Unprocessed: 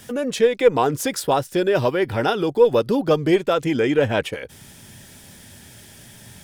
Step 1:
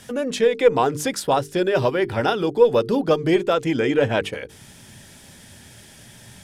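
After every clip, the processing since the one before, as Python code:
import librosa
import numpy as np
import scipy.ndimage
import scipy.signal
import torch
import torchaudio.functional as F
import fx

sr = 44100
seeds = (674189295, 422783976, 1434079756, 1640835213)

y = scipy.signal.sosfilt(scipy.signal.bessel(4, 11000.0, 'lowpass', norm='mag', fs=sr, output='sos'), x)
y = fx.hum_notches(y, sr, base_hz=50, count=9)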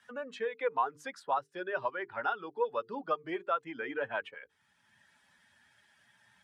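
y = fx.bin_expand(x, sr, power=1.5)
y = fx.bandpass_q(y, sr, hz=1200.0, q=2.3)
y = fx.band_squash(y, sr, depth_pct=40)
y = y * 10.0 ** (-2.0 / 20.0)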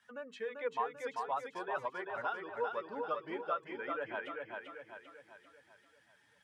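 y = fx.echo_feedback(x, sr, ms=391, feedback_pct=47, wet_db=-4.0)
y = y * 10.0 ** (-5.5 / 20.0)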